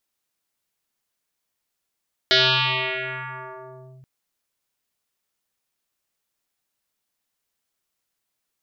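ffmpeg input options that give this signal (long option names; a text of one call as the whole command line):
ffmpeg -f lavfi -i "aevalsrc='0.237*pow(10,-3*t/3.22)*sin(2*PI*131*t+8.6*clip(1-t/1.72,0,1)*sin(2*PI*3.94*131*t))':duration=1.73:sample_rate=44100" out.wav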